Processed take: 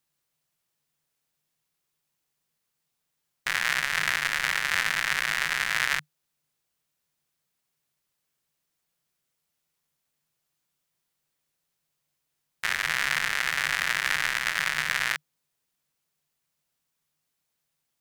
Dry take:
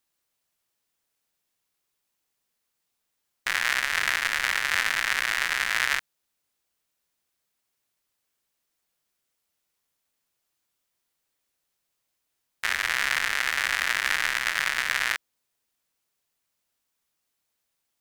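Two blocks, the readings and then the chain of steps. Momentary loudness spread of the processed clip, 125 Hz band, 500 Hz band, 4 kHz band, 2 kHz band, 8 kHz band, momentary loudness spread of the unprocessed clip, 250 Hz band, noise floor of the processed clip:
4 LU, n/a, -1.0 dB, -1.0 dB, -1.0 dB, -1.0 dB, 4 LU, +2.0 dB, -80 dBFS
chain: bell 150 Hz +14.5 dB 0.32 oct; gain -1 dB

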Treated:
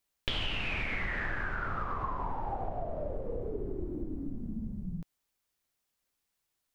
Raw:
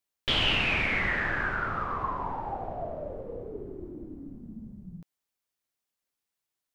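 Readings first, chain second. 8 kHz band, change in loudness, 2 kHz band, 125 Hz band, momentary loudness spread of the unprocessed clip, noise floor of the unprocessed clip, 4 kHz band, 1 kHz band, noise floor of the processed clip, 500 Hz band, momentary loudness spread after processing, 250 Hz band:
n/a, -7.5 dB, -7.5 dB, -1.5 dB, 20 LU, under -85 dBFS, -9.5 dB, -4.5 dB, -83 dBFS, -2.0 dB, 7 LU, -0.5 dB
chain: low shelf 65 Hz +10.5 dB; compressor 6:1, threshold -35 dBFS, peak gain reduction 16 dB; gain +4 dB

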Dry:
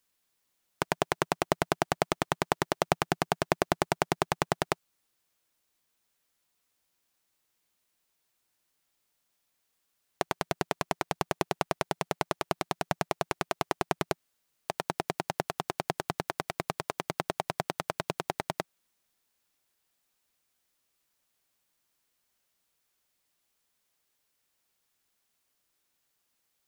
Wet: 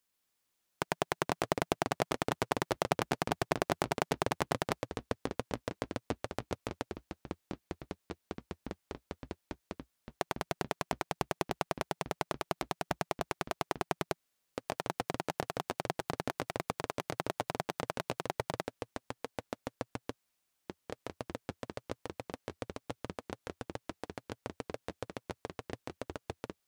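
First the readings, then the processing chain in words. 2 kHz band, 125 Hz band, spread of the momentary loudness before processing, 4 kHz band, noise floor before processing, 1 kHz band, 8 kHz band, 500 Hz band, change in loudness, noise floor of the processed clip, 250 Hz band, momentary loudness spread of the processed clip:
-3.5 dB, -2.0 dB, 6 LU, -3.5 dB, -78 dBFS, -4.0 dB, -3.5 dB, -2.5 dB, -6.0 dB, -81 dBFS, -1.5 dB, 13 LU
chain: echoes that change speed 0.137 s, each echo -6 st, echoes 3, each echo -6 dB; gain -4.5 dB

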